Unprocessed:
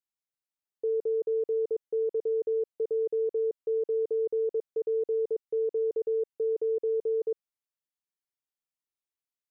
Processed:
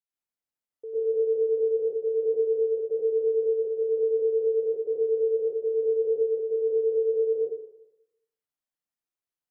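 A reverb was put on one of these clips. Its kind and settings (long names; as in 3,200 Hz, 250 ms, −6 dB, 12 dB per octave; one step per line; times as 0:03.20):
dense smooth reverb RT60 0.88 s, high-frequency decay 0.35×, pre-delay 90 ms, DRR −9 dB
level −9 dB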